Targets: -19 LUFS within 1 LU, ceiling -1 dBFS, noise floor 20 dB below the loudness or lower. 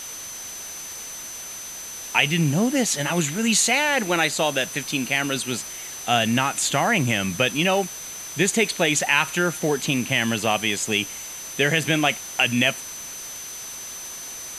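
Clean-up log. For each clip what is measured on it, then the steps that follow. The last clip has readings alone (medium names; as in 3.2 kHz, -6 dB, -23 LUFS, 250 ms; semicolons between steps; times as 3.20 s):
steady tone 6.1 kHz; tone level -35 dBFS; noise floor -36 dBFS; noise floor target -43 dBFS; loudness -22.5 LUFS; peak level -4.5 dBFS; loudness target -19.0 LUFS
-> band-stop 6.1 kHz, Q 30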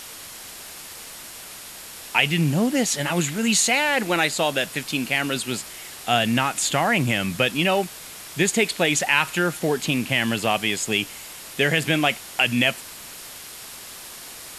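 steady tone not found; noise floor -40 dBFS; noise floor target -42 dBFS
-> noise reduction 6 dB, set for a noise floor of -40 dBFS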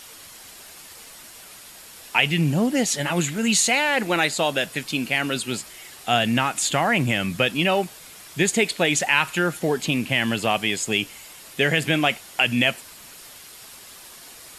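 noise floor -44 dBFS; loudness -21.5 LUFS; peak level -4.5 dBFS; loudness target -19.0 LUFS
-> trim +2.5 dB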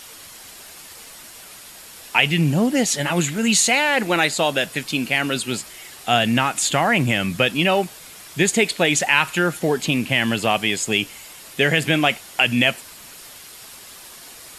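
loudness -19.0 LUFS; peak level -2.0 dBFS; noise floor -42 dBFS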